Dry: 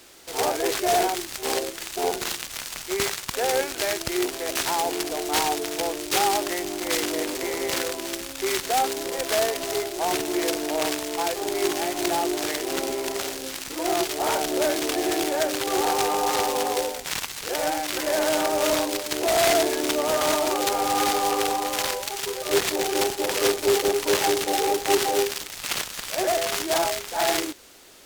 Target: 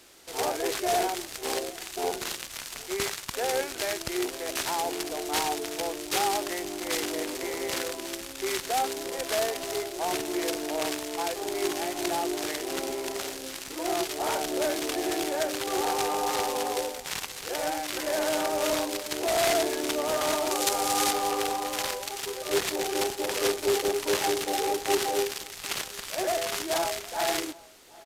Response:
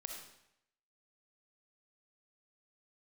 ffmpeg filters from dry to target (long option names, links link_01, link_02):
-filter_complex "[0:a]aresample=32000,aresample=44100,asettb=1/sr,asplit=3[link_01][link_02][link_03];[link_01]atrim=end=20.514[link_04];[link_02]atrim=start=20.51:end=21.11,asetpts=PTS-STARTPTS,afade=type=in:duration=0.004:curve=qsin,afade=type=out:start_time=0.596:duration=0.004:curve=qsin,equalizer=frequency=8700:width=0.42:gain=7[link_05];[link_03]atrim=start=21.106[link_06];[link_04][link_05]acrossfade=duration=0.004:curve1=hsin:curve2=qsin[link_07];[link_07][link_06]acrossfade=duration=0.004:curve1=qsin:curve2=hsin,asplit=2[link_08][link_09];[link_09]adelay=758,volume=-22dB,highshelf=frequency=4000:gain=-17.1[link_10];[link_08][link_10]amix=inputs=2:normalize=0,volume=-4.5dB"